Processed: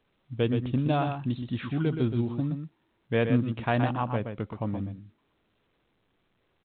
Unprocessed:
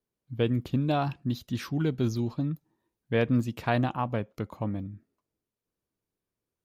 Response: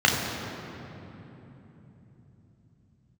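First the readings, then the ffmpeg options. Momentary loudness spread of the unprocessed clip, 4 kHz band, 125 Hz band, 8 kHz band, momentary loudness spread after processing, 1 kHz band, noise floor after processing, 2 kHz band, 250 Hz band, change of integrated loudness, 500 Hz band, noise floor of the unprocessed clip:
9 LU, -0.5 dB, +1.0 dB, no reading, 10 LU, +0.5 dB, -72 dBFS, +1.0 dB, +1.0 dB, +0.5 dB, +1.0 dB, under -85 dBFS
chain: -filter_complex "[0:a]asplit=2[s0][s1];[s1]adelay=122.4,volume=0.447,highshelf=f=4000:g=-2.76[s2];[s0][s2]amix=inputs=2:normalize=0" -ar 8000 -c:a pcm_alaw

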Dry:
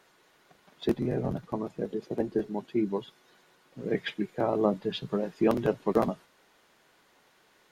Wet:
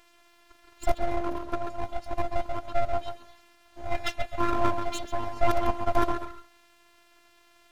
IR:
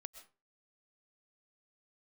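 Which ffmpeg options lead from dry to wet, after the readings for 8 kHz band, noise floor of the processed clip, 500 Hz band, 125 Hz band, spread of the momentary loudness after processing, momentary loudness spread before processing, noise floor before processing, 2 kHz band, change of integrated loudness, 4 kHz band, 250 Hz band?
no reading, -60 dBFS, -2.0 dB, -2.0 dB, 9 LU, 8 LU, -64 dBFS, +4.5 dB, -0.5 dB, +1.0 dB, -5.5 dB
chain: -filter_complex "[0:a]asplit=2[s0][s1];[1:a]atrim=start_sample=2205,lowpass=2500,adelay=135[s2];[s1][s2]afir=irnorm=-1:irlink=0,volume=0.891[s3];[s0][s3]amix=inputs=2:normalize=0,afftfilt=real='hypot(re,im)*cos(PI*b)':imag='0':win_size=512:overlap=0.75,aeval=exprs='abs(val(0))':c=same,volume=2.24"

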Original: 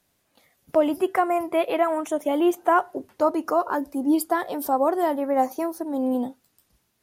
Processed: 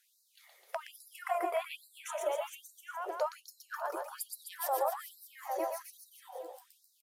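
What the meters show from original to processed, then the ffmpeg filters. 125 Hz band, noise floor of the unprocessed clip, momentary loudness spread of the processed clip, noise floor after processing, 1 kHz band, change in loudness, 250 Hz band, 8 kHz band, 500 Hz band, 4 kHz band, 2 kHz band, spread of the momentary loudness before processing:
no reading, -71 dBFS, 16 LU, -72 dBFS, -13.0 dB, -14.0 dB, -29.0 dB, -5.0 dB, -14.0 dB, -7.5 dB, -11.0 dB, 5 LU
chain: -af "acompressor=threshold=0.0251:ratio=3,aecho=1:1:120|258|416.7|599.2|809.1:0.631|0.398|0.251|0.158|0.1,afftfilt=real='re*gte(b*sr/1024,340*pow(3900/340,0.5+0.5*sin(2*PI*1.2*pts/sr)))':imag='im*gte(b*sr/1024,340*pow(3900/340,0.5+0.5*sin(2*PI*1.2*pts/sr)))':win_size=1024:overlap=0.75"

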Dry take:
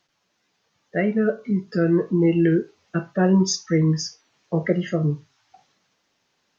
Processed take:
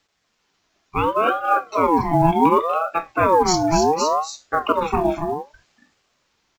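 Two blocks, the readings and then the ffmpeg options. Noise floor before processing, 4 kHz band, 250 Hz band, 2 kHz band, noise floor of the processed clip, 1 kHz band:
-72 dBFS, +3.0 dB, -3.0 dB, +4.0 dB, -70 dBFS, +19.5 dB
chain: -af "aecho=1:1:242|279.9:0.282|0.501,acrusher=bits=9:mode=log:mix=0:aa=0.000001,aeval=exprs='val(0)*sin(2*PI*750*n/s+750*0.35/0.68*sin(2*PI*0.68*n/s))':c=same,volume=1.58"

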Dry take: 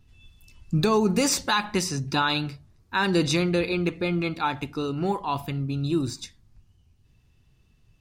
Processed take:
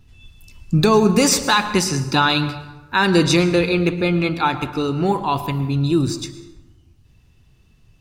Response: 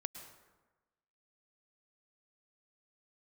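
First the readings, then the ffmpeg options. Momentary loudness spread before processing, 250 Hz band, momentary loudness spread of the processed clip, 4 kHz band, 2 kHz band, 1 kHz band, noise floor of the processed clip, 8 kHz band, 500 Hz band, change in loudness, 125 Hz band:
8 LU, +7.5 dB, 8 LU, +7.0 dB, +7.5 dB, +7.5 dB, -54 dBFS, +7.0 dB, +7.5 dB, +7.0 dB, +7.5 dB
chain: -filter_complex "[0:a]asplit=2[s0][s1];[1:a]atrim=start_sample=2205[s2];[s1][s2]afir=irnorm=-1:irlink=0,volume=1.68[s3];[s0][s3]amix=inputs=2:normalize=0"

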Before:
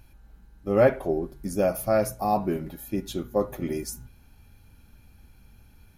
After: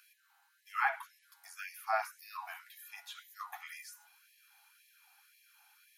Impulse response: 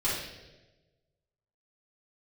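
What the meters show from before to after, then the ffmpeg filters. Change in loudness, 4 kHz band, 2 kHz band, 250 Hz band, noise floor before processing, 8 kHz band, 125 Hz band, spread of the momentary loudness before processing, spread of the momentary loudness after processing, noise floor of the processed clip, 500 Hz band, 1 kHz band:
-13.0 dB, -6.5 dB, 0.0 dB, under -40 dB, -56 dBFS, -13.5 dB, under -40 dB, 12 LU, 19 LU, -72 dBFS, -24.0 dB, -7.5 dB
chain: -filter_complex "[0:a]acrossover=split=2700[s0][s1];[s1]acompressor=threshold=0.00251:ratio=4:attack=1:release=60[s2];[s0][s2]amix=inputs=2:normalize=0,afftfilt=real='re*gte(b*sr/1024,660*pow(1700/660,0.5+0.5*sin(2*PI*1.9*pts/sr)))':imag='im*gte(b*sr/1024,660*pow(1700/660,0.5+0.5*sin(2*PI*1.9*pts/sr)))':win_size=1024:overlap=0.75,volume=1.12"

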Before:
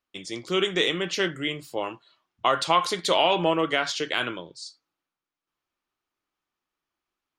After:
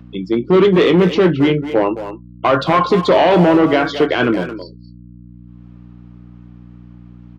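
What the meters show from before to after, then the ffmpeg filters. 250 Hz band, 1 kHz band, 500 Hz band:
+17.5 dB, +8.0 dB, +13.5 dB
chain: -filter_complex "[0:a]afftdn=nr=29:nf=-34,equalizer=f=210:w=0.3:g=15,aeval=exprs='1*(cos(1*acos(clip(val(0)/1,-1,1)))-cos(1*PI/2))+0.0562*(cos(3*acos(clip(val(0)/1,-1,1)))-cos(3*PI/2))+0.00891*(cos(4*acos(clip(val(0)/1,-1,1)))-cos(4*PI/2))':c=same,asplit=2[s0][s1];[s1]alimiter=limit=0.266:level=0:latency=1:release=13,volume=1.26[s2];[s0][s2]amix=inputs=2:normalize=0,acompressor=mode=upward:threshold=0.0447:ratio=2.5,volume=2.82,asoftclip=hard,volume=0.355,aeval=exprs='val(0)+0.02*(sin(2*PI*60*n/s)+sin(2*PI*2*60*n/s)/2+sin(2*PI*3*60*n/s)/3+sin(2*PI*4*60*n/s)/4+sin(2*PI*5*60*n/s)/5)':c=same,highpass=100,lowpass=3200,asplit=2[s3][s4];[s4]adelay=22,volume=0.224[s5];[s3][s5]amix=inputs=2:normalize=0,asplit=2[s6][s7];[s7]adelay=220,highpass=300,lowpass=3400,asoftclip=type=hard:threshold=0.211,volume=0.355[s8];[s6][s8]amix=inputs=2:normalize=0,volume=1.19"

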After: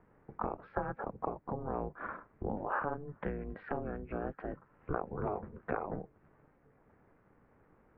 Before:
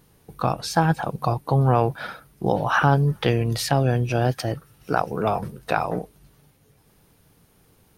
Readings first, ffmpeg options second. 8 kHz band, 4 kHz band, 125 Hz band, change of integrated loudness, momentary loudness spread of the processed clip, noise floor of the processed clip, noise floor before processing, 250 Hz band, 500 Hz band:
under -40 dB, under -35 dB, -23.0 dB, -16.5 dB, 8 LU, -68 dBFS, -59 dBFS, -15.0 dB, -14.0 dB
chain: -af "acompressor=threshold=0.0224:ratio=3,highpass=f=210:t=q:w=0.5412,highpass=f=210:t=q:w=1.307,lowpass=f=2000:t=q:w=0.5176,lowpass=f=2000:t=q:w=0.7071,lowpass=f=2000:t=q:w=1.932,afreqshift=-140,aeval=exprs='val(0)*sin(2*PI*150*n/s)':c=same,volume=1.12"

